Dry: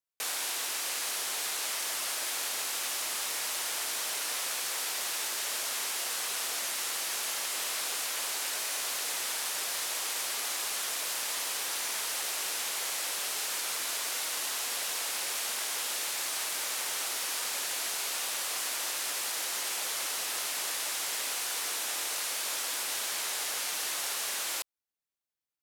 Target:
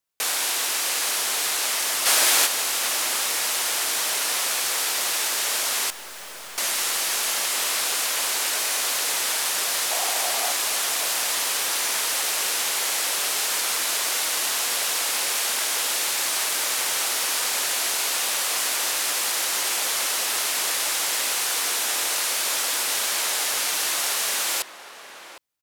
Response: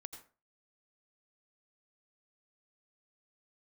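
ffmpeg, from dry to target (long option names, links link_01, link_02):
-filter_complex "[0:a]asplit=3[link_01][link_02][link_03];[link_01]afade=type=out:start_time=2.05:duration=0.02[link_04];[link_02]acontrast=65,afade=type=in:start_time=2.05:duration=0.02,afade=type=out:start_time=2.45:duration=0.02[link_05];[link_03]afade=type=in:start_time=2.45:duration=0.02[link_06];[link_04][link_05][link_06]amix=inputs=3:normalize=0,asettb=1/sr,asplit=3[link_07][link_08][link_09];[link_07]atrim=end=5.904[link_10];[link_08]atrim=start=5.9:end=6.58,asetpts=PTS-STARTPTS,afade=type=in:duration=0.004:curve=qsin,afade=type=out:start_time=0.676:duration=0.004:curve=qsin,aeval=exprs='(tanh(282*val(0)+0.5)-tanh(0.5))/282':channel_layout=same[link_11];[link_09]atrim=start=6.576[link_12];[link_10][link_11]acrossfade=duration=0.004:curve1=hsin:curve2=qsin[link_13];[link_13][link_12]acrossfade=duration=0.004:curve1=qsin:curve2=hsin,asettb=1/sr,asplit=3[link_14][link_15][link_16];[link_14]atrim=end=9.914[link_17];[link_15]atrim=start=9.91:end=10.52,asetpts=PTS-STARTPTS,afade=type=in:duration=0.004:curve=qsin,afade=type=out:start_time=0.606:duration=0.004:curve=qsin,equalizer=frequency=710:width_type=o:width=0.41:gain=12[link_18];[link_16]atrim=start=10.516[link_19];[link_17][link_18]acrossfade=duration=0.004:curve1=hsin:curve2=qsin[link_20];[link_20][link_19]acrossfade=duration=0.004:curve1=qsin:curve2=hsin,asplit=2[link_21][link_22];[link_22]adelay=758,volume=-10dB,highshelf=frequency=4000:gain=-17.1[link_23];[link_21][link_23]amix=inputs=2:normalize=0,volume=9dB"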